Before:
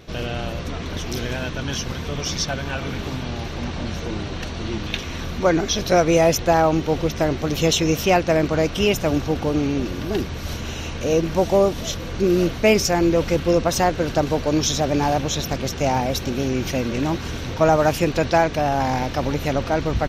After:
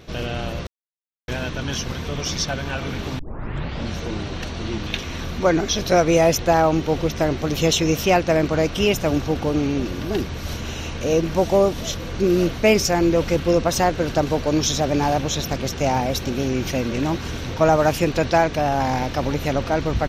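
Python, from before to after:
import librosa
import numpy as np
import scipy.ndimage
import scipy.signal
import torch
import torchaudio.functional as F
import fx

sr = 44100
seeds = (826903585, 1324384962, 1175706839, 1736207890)

y = fx.edit(x, sr, fx.silence(start_s=0.67, length_s=0.61),
    fx.tape_start(start_s=3.19, length_s=0.67), tone=tone)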